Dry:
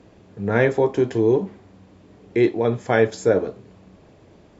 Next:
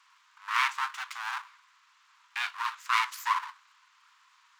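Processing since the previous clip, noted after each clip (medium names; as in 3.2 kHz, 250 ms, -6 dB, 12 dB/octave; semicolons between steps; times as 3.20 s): full-wave rectifier; Chebyshev high-pass 1 kHz, order 6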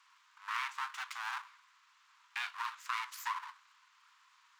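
compression 4:1, threshold -31 dBFS, peak gain reduction 9.5 dB; trim -3.5 dB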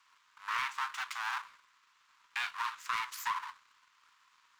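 waveshaping leveller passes 1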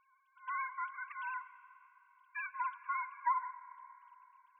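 formants replaced by sine waves; algorithmic reverb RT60 3.3 s, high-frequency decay 0.7×, pre-delay 75 ms, DRR 14.5 dB; trim -2 dB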